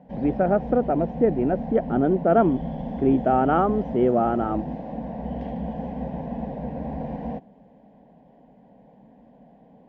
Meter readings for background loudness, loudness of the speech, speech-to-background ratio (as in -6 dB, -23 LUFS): -32.5 LUFS, -22.5 LUFS, 10.0 dB